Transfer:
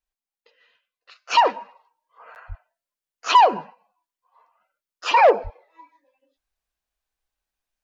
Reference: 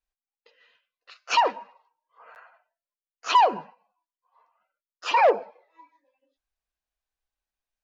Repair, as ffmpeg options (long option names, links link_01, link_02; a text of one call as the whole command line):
ffmpeg -i in.wav -filter_complex "[0:a]asplit=3[link_01][link_02][link_03];[link_01]afade=type=out:start_time=2.48:duration=0.02[link_04];[link_02]highpass=frequency=140:width=0.5412,highpass=frequency=140:width=1.3066,afade=type=in:start_time=2.48:duration=0.02,afade=type=out:start_time=2.6:duration=0.02[link_05];[link_03]afade=type=in:start_time=2.6:duration=0.02[link_06];[link_04][link_05][link_06]amix=inputs=3:normalize=0,asplit=3[link_07][link_08][link_09];[link_07]afade=type=out:start_time=5.43:duration=0.02[link_10];[link_08]highpass=frequency=140:width=0.5412,highpass=frequency=140:width=1.3066,afade=type=in:start_time=5.43:duration=0.02,afade=type=out:start_time=5.55:duration=0.02[link_11];[link_09]afade=type=in:start_time=5.55:duration=0.02[link_12];[link_10][link_11][link_12]amix=inputs=3:normalize=0,asetnsamples=nb_out_samples=441:pad=0,asendcmd='1.35 volume volume -4.5dB',volume=0dB" out.wav